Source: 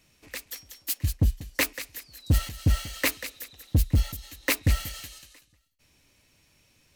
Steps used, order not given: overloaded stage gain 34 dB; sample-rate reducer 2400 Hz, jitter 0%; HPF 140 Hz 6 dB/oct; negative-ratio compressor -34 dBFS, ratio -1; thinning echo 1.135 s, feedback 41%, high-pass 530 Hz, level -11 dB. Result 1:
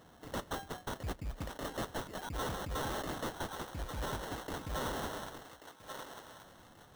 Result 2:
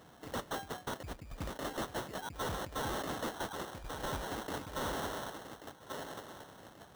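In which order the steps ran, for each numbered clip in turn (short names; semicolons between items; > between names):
HPF > negative-ratio compressor > sample-rate reducer > thinning echo > overloaded stage; negative-ratio compressor > thinning echo > sample-rate reducer > HPF > overloaded stage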